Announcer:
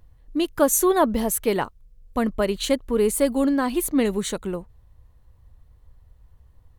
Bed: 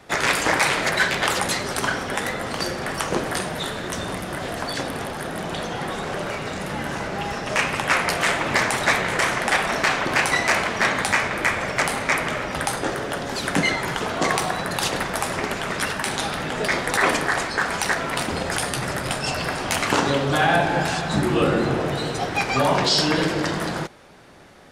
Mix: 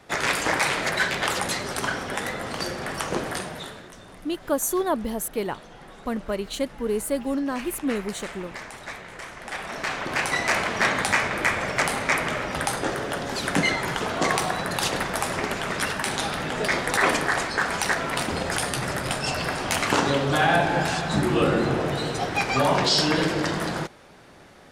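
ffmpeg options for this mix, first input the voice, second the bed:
ffmpeg -i stem1.wav -i stem2.wav -filter_complex "[0:a]adelay=3900,volume=-5.5dB[link_01];[1:a]volume=12.5dB,afade=type=out:start_time=3.25:duration=0.68:silence=0.199526,afade=type=in:start_time=9.36:duration=1.44:silence=0.158489[link_02];[link_01][link_02]amix=inputs=2:normalize=0" out.wav

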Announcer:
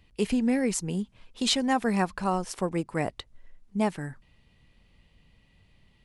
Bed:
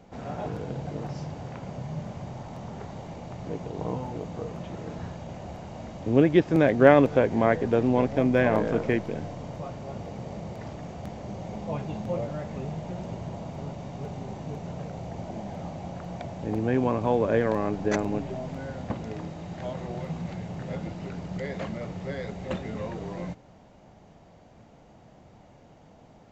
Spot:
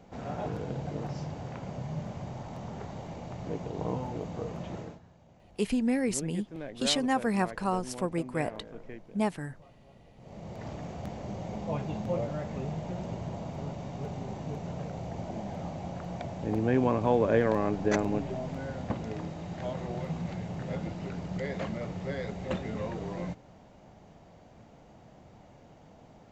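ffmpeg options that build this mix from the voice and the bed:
ffmpeg -i stem1.wav -i stem2.wav -filter_complex "[0:a]adelay=5400,volume=-2.5dB[link_01];[1:a]volume=17.5dB,afade=type=out:start_time=4.77:duration=0.23:silence=0.11885,afade=type=in:start_time=10.16:duration=0.56:silence=0.112202[link_02];[link_01][link_02]amix=inputs=2:normalize=0" out.wav

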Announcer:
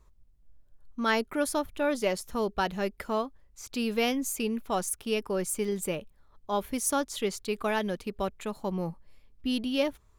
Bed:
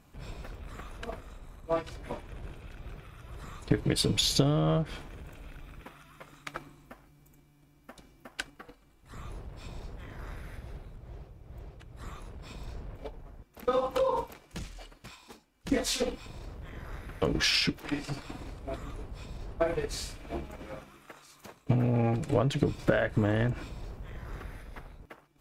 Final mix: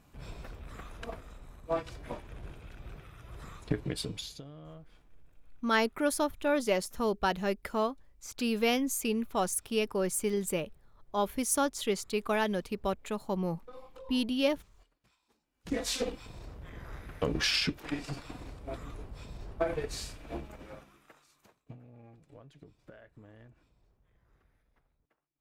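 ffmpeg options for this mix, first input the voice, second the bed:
ffmpeg -i stem1.wav -i stem2.wav -filter_complex "[0:a]adelay=4650,volume=-0.5dB[link_01];[1:a]volume=18dB,afade=type=out:start_time=3.42:duration=0.96:silence=0.0944061,afade=type=in:start_time=15.35:duration=0.55:silence=0.1,afade=type=out:start_time=20.3:duration=1.49:silence=0.0562341[link_02];[link_01][link_02]amix=inputs=2:normalize=0" out.wav

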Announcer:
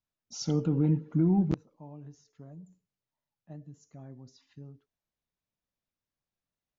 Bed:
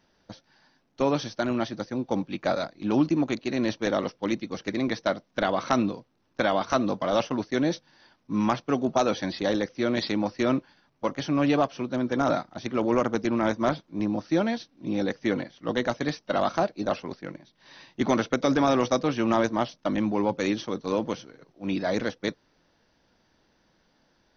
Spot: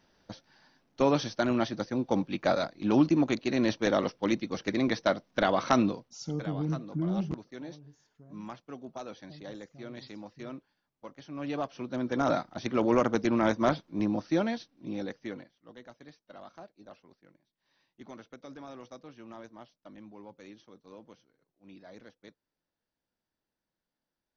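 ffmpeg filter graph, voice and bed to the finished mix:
ffmpeg -i stem1.wav -i stem2.wav -filter_complex "[0:a]adelay=5800,volume=-6dB[link_01];[1:a]volume=16.5dB,afade=type=out:start_time=5.92:duration=0.34:silence=0.133352,afade=type=in:start_time=11.28:duration=1.29:silence=0.141254,afade=type=out:start_time=13.94:duration=1.67:silence=0.0749894[link_02];[link_01][link_02]amix=inputs=2:normalize=0" out.wav

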